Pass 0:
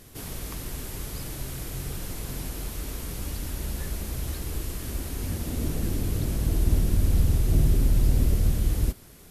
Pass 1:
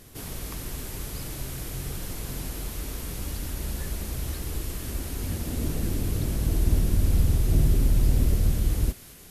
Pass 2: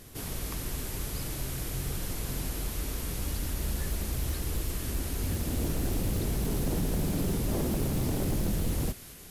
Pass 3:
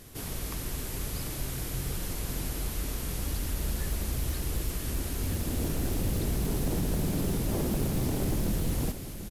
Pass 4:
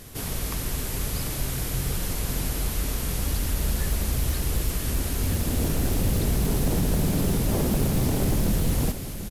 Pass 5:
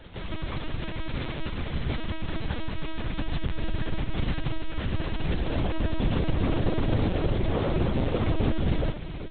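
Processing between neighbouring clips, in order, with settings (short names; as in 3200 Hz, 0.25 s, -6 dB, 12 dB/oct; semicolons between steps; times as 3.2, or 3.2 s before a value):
thin delay 0.214 s, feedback 74%, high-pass 1500 Hz, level -12 dB
wavefolder -23.5 dBFS
echo 0.744 s -11.5 dB
bell 330 Hz -3.5 dB 0.38 oct; gain +6 dB
minimum comb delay 1.8 ms; LPC vocoder at 8 kHz pitch kept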